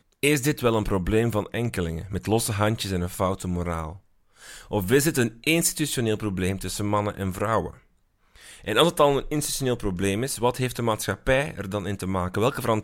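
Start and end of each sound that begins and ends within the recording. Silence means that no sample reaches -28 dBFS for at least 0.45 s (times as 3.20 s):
4.73–7.68 s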